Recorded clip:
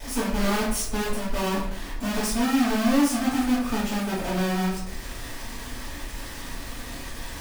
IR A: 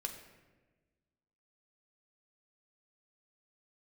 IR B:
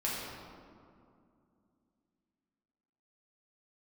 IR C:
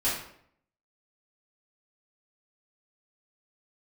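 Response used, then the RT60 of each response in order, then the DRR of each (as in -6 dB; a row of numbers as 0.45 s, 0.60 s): C; 1.3 s, 2.4 s, 0.65 s; 3.5 dB, -7.0 dB, -10.5 dB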